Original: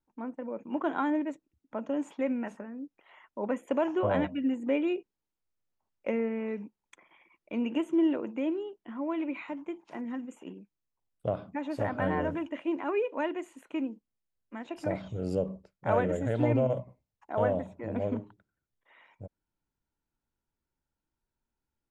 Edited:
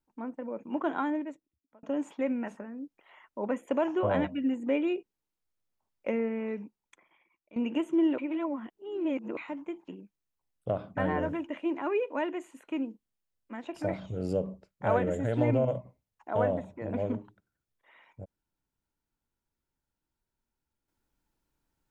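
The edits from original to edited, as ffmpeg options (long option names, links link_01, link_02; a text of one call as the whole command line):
ffmpeg -i in.wav -filter_complex "[0:a]asplit=7[link_01][link_02][link_03][link_04][link_05][link_06][link_07];[link_01]atrim=end=1.83,asetpts=PTS-STARTPTS,afade=type=out:start_time=0.9:duration=0.93[link_08];[link_02]atrim=start=1.83:end=7.56,asetpts=PTS-STARTPTS,afade=type=in:duration=0.004:curve=hsin,afade=type=out:start_time=4.69:duration=1.04:silence=0.149624[link_09];[link_03]atrim=start=7.56:end=8.182,asetpts=PTS-STARTPTS,afade=type=in:duration=0.004:curve=hsin:silence=0.149624[link_10];[link_04]atrim=start=8.178:end=9.372,asetpts=PTS-STARTPTS,areverse[link_11];[link_05]atrim=start=9.368:end=9.882[link_12];[link_06]atrim=start=10.458:end=11.552[link_13];[link_07]atrim=start=11.988[link_14];[link_08][link_09][link_10]concat=n=3:v=0:a=1[link_15];[link_15][link_11]acrossfade=duration=0.004:curve1=hsin:curve2=hsin[link_16];[link_16][link_12]acrossfade=duration=0.004:curve1=hsin:curve2=hsin[link_17];[link_17][link_13]acrossfade=duration=0.004:curve1=hsin:curve2=hsin[link_18];[link_18][link_14]acrossfade=duration=0.004:curve1=hsin:curve2=hsin" out.wav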